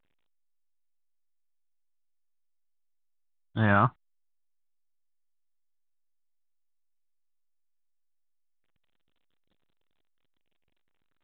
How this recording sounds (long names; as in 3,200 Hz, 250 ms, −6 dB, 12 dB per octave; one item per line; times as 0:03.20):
a quantiser's noise floor 12 bits, dither none
phaser sweep stages 4, 0.23 Hz, lowest notch 410–1,900 Hz
A-law companding